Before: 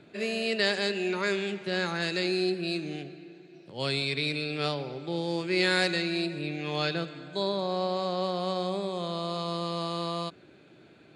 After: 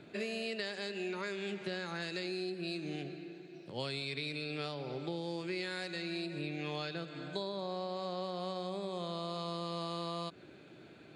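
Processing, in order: compressor 10:1, threshold -35 dBFS, peak gain reduction 15.5 dB

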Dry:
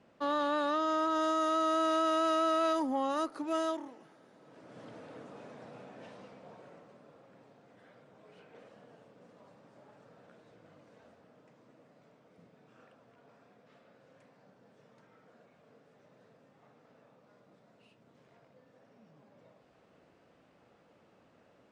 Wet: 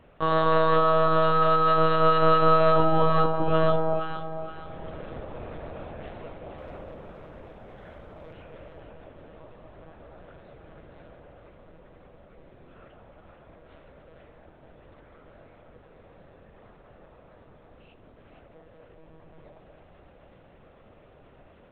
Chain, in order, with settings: on a send at -10 dB: reverb RT60 1.1 s, pre-delay 3 ms; on the sum: monotone LPC vocoder at 8 kHz 160 Hz; 6.58–8.33 sample leveller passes 1; echo with dull and thin repeats by turns 0.235 s, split 960 Hz, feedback 60%, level -3 dB; gain +8.5 dB

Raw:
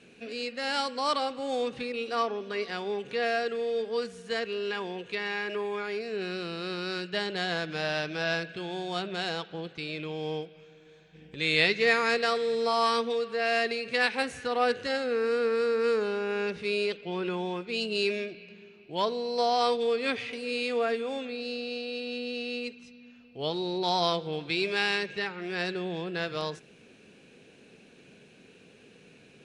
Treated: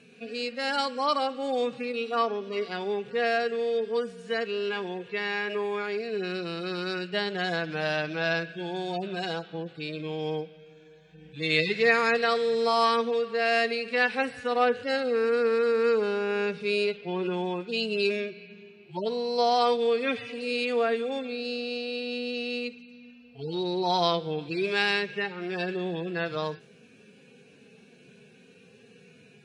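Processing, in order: median-filter separation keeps harmonic; gain +2.5 dB

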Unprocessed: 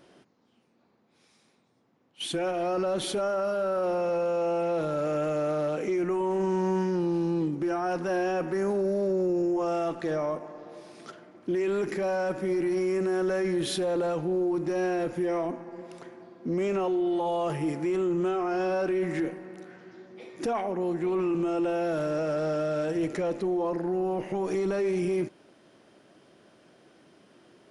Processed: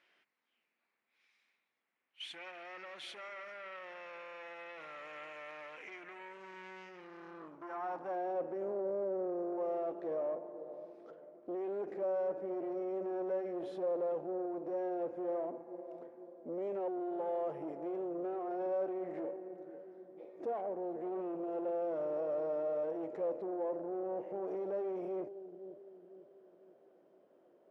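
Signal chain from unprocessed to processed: analogue delay 0.499 s, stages 2048, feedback 45%, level -13 dB; tube stage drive 27 dB, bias 0.5; band-pass sweep 2200 Hz -> 550 Hz, 6.94–8.44; gain -1 dB

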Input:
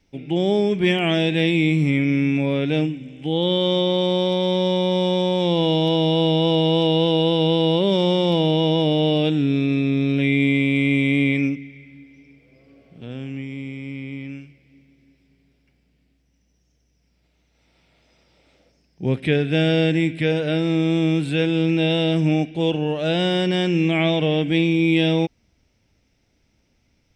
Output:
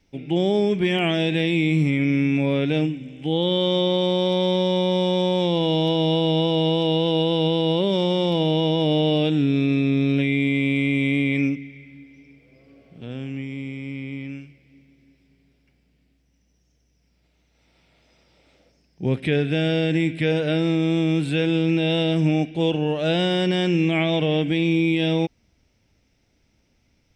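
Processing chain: limiter -12 dBFS, peak gain reduction 5 dB

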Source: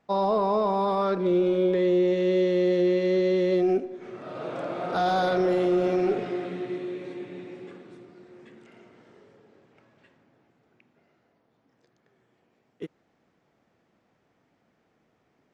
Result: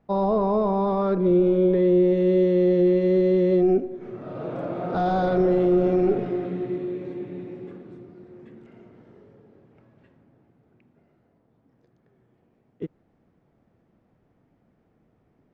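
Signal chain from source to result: tilt -3.5 dB/oct; gain -1.5 dB

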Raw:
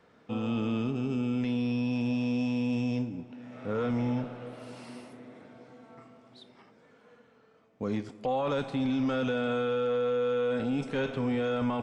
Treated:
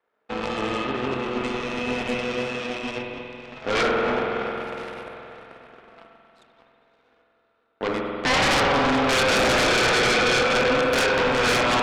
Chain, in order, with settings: in parallel at 0 dB: compressor 6:1, threshold -44 dBFS, peak gain reduction 16.5 dB; on the sum: three-band isolator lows -24 dB, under 320 Hz, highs -12 dB, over 3100 Hz; notches 60/120/180/240/300/360/420/480/540 Hz; on a send: diffused feedback echo 0.592 s, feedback 65%, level -9.5 dB; on the sum: added harmonics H 7 -17 dB, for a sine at -19 dBFS; spring tank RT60 3 s, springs 46 ms, chirp 65 ms, DRR 1.5 dB; sine folder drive 15 dB, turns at -16.5 dBFS

